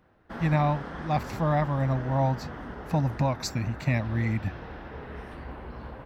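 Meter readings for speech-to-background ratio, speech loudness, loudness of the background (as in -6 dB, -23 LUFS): 12.0 dB, -28.0 LUFS, -40.0 LUFS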